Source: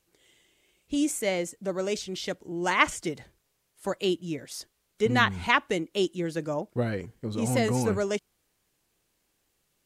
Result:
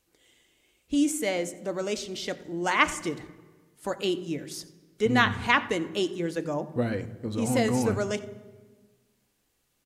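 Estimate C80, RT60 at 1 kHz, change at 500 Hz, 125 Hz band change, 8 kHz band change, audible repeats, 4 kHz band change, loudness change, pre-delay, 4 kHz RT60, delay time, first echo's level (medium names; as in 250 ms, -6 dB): 16.0 dB, 1.3 s, 0.0 dB, -1.0 dB, 0.0 dB, 1, 0.0 dB, +0.5 dB, 3 ms, 1.0 s, 88 ms, -20.5 dB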